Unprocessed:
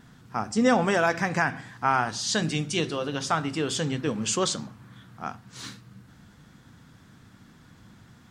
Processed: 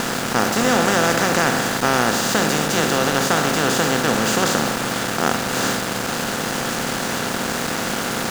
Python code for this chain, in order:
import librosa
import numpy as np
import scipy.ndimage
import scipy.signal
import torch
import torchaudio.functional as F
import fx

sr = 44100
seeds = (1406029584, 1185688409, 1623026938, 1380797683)

y = fx.bin_compress(x, sr, power=0.2)
y = np.where(np.abs(y) >= 10.0 ** (-19.5 / 20.0), y, 0.0)
y = F.gain(torch.from_numpy(y), -1.5).numpy()